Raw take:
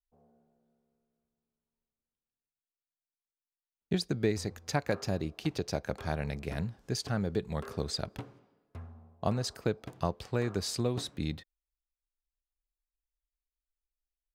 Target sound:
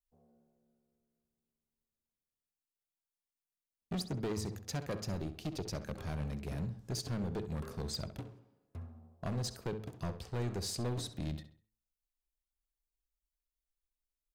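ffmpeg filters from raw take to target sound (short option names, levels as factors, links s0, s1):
-filter_complex "[0:a]equalizer=f=1600:w=0.32:g=-7,bandreject=f=108.3:t=h:w=4,bandreject=f=216.6:t=h:w=4,bandreject=f=324.9:t=h:w=4,bandreject=f=433.2:t=h:w=4,asoftclip=type=hard:threshold=0.0224,asplit=2[s0][s1];[s1]adelay=66,lowpass=f=4300:p=1,volume=0.266,asplit=2[s2][s3];[s3]adelay=66,lowpass=f=4300:p=1,volume=0.38,asplit=2[s4][s5];[s5]adelay=66,lowpass=f=4300:p=1,volume=0.38,asplit=2[s6][s7];[s7]adelay=66,lowpass=f=4300:p=1,volume=0.38[s8];[s0][s2][s4][s6][s8]amix=inputs=5:normalize=0"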